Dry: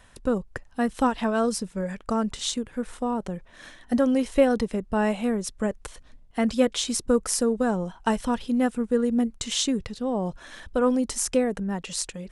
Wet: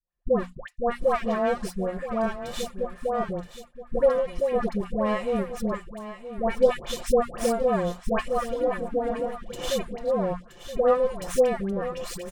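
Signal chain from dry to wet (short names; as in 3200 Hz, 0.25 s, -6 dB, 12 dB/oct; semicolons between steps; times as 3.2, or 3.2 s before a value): minimum comb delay 1.7 ms; notches 60/120/180/240 Hz; gate -41 dBFS, range -35 dB; high shelf 2700 Hz -10.5 dB; comb 5.7 ms, depth 60%; 4.08–4.51 compressor 6:1, threshold -22 dBFS, peak gain reduction 11 dB; 8.54–9.47 AM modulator 210 Hz, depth 50%; dispersion highs, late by 0.124 s, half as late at 890 Hz; on a send: echo 0.973 s -12 dB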